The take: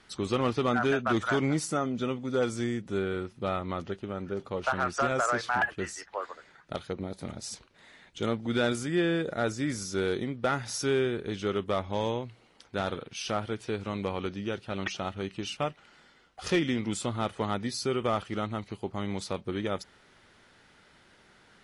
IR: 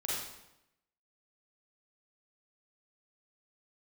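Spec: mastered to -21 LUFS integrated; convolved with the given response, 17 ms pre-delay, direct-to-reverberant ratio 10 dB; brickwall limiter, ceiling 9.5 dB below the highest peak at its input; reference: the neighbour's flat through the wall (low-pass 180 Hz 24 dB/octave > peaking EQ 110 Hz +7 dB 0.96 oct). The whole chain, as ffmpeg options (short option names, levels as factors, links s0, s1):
-filter_complex "[0:a]alimiter=level_in=1.5:limit=0.0631:level=0:latency=1,volume=0.668,asplit=2[s0][s1];[1:a]atrim=start_sample=2205,adelay=17[s2];[s1][s2]afir=irnorm=-1:irlink=0,volume=0.188[s3];[s0][s3]amix=inputs=2:normalize=0,lowpass=f=180:w=0.5412,lowpass=f=180:w=1.3066,equalizer=f=110:t=o:w=0.96:g=7,volume=10"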